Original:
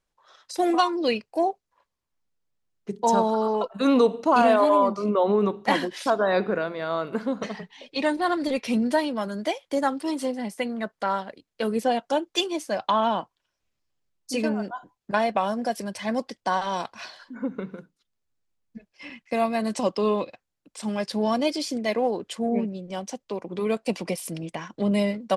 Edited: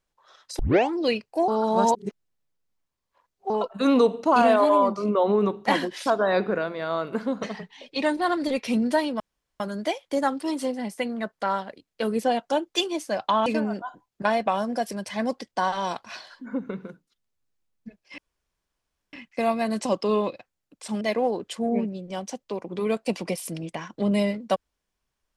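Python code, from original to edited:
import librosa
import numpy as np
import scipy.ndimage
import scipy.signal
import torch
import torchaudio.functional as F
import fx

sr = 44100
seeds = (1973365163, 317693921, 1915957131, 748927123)

y = fx.edit(x, sr, fx.tape_start(start_s=0.59, length_s=0.34),
    fx.reverse_span(start_s=1.48, length_s=2.02),
    fx.insert_room_tone(at_s=9.2, length_s=0.4),
    fx.cut(start_s=13.06, length_s=1.29),
    fx.insert_room_tone(at_s=19.07, length_s=0.95),
    fx.cut(start_s=20.95, length_s=0.86), tone=tone)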